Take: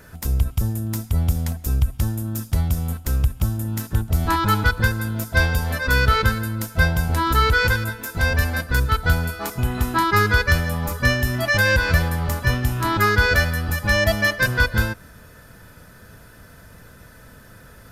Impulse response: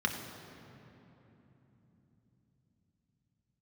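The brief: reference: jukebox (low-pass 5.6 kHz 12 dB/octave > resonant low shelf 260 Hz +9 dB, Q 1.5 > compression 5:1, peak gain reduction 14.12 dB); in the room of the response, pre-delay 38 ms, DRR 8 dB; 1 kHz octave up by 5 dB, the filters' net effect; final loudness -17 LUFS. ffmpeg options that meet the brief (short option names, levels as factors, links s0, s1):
-filter_complex "[0:a]equalizer=f=1000:t=o:g=7,asplit=2[s0][s1];[1:a]atrim=start_sample=2205,adelay=38[s2];[s1][s2]afir=irnorm=-1:irlink=0,volume=0.168[s3];[s0][s3]amix=inputs=2:normalize=0,lowpass=5600,lowshelf=f=260:t=q:w=1.5:g=9,acompressor=threshold=0.126:ratio=5,volume=1.88"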